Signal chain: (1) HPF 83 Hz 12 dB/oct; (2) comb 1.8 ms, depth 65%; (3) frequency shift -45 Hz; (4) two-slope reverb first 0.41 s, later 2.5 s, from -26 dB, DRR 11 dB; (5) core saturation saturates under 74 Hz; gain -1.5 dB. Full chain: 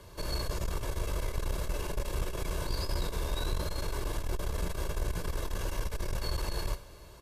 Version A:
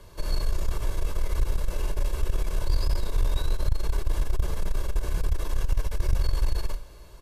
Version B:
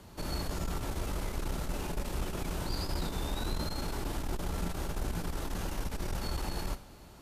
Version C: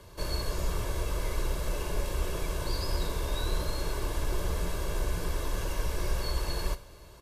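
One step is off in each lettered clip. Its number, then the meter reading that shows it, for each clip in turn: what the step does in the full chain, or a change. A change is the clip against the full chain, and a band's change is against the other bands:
1, 125 Hz band +6.0 dB; 2, 250 Hz band +5.0 dB; 5, crest factor change -1.5 dB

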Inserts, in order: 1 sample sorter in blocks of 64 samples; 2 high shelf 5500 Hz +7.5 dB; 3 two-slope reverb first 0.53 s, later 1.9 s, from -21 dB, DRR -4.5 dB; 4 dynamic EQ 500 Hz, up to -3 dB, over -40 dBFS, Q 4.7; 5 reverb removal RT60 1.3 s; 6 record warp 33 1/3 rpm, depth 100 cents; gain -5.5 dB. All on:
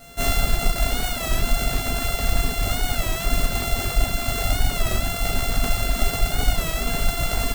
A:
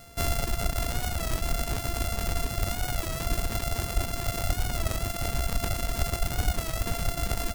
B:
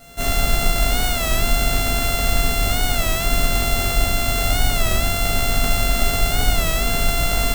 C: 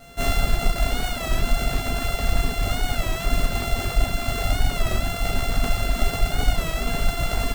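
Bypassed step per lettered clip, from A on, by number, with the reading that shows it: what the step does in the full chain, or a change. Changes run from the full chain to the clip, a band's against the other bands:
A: 3, loudness change -6.5 LU; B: 5, loudness change +4.0 LU; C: 2, 8 kHz band -5.0 dB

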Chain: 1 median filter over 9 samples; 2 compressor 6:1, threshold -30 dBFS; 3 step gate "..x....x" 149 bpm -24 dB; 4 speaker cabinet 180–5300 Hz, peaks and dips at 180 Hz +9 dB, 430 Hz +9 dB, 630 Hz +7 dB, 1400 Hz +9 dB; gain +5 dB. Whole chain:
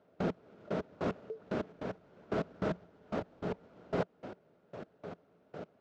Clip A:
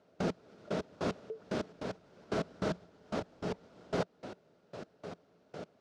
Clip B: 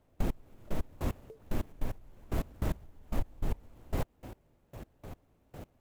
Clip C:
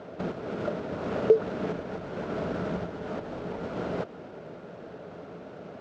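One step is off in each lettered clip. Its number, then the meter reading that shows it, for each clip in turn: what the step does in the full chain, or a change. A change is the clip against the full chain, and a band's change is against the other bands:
1, 4 kHz band +6.5 dB; 4, crest factor change -3.5 dB; 3, crest factor change +2.5 dB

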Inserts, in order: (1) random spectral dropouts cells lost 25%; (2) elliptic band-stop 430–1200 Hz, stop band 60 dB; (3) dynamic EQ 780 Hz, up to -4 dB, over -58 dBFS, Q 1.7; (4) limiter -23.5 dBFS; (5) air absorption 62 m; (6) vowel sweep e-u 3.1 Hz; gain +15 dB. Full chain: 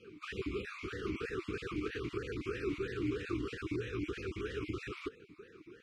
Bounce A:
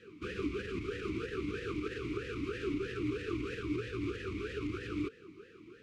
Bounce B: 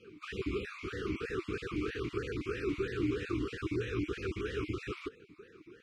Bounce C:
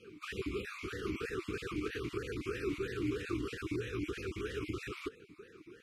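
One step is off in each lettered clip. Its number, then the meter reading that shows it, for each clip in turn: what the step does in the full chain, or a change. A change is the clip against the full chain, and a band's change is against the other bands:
1, 250 Hz band +1.5 dB; 4, mean gain reduction 2.0 dB; 5, 8 kHz band +5.0 dB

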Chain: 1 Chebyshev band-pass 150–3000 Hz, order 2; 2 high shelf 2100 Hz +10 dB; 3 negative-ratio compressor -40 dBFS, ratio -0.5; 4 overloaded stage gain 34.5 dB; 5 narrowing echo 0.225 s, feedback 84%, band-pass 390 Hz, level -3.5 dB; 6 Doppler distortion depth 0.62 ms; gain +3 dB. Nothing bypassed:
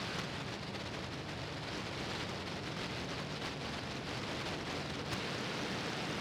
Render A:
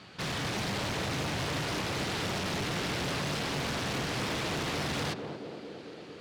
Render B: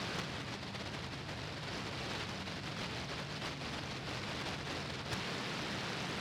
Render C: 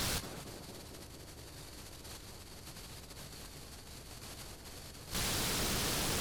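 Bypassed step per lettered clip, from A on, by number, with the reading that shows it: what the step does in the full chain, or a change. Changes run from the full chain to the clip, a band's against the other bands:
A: 3, crest factor change -3.0 dB; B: 5, 500 Hz band -2.0 dB; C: 1, 8 kHz band +14.0 dB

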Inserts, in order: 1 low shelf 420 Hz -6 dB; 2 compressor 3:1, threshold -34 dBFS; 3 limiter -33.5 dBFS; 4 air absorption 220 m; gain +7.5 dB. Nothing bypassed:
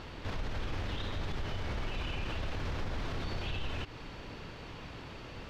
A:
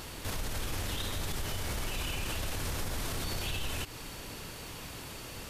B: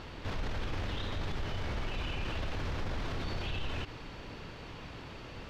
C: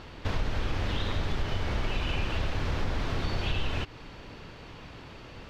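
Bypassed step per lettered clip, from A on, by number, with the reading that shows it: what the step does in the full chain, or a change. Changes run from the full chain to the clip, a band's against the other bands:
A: 4, 4 kHz band +5.0 dB; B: 2, mean gain reduction 4.5 dB; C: 3, mean gain reduction 4.0 dB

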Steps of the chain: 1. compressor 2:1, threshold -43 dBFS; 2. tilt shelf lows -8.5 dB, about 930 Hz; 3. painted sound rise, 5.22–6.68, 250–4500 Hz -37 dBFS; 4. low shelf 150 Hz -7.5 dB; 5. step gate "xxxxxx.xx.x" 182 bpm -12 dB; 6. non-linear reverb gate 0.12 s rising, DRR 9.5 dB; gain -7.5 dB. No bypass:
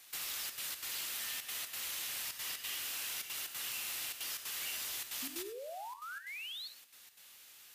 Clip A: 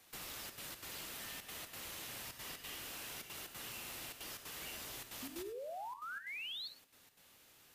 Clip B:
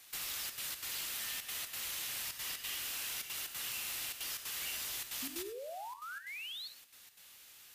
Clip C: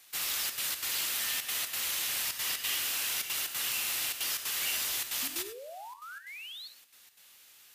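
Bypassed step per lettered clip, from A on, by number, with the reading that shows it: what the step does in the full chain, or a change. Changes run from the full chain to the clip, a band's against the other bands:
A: 2, 125 Hz band +10.0 dB; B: 4, 125 Hz band +4.5 dB; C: 1, mean gain reduction 5.5 dB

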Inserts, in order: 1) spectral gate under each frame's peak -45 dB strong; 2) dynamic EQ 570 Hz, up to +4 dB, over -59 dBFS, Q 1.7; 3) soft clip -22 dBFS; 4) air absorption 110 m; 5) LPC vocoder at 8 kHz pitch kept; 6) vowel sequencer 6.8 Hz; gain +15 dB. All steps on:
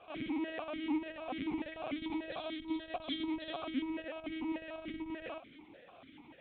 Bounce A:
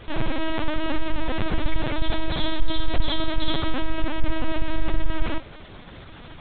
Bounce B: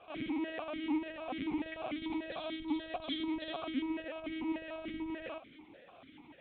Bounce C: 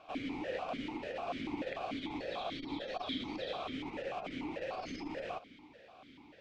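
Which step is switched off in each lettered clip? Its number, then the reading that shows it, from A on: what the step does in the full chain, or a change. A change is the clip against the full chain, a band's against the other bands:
6, 125 Hz band +14.0 dB; 3, distortion -19 dB; 5, 250 Hz band -6.5 dB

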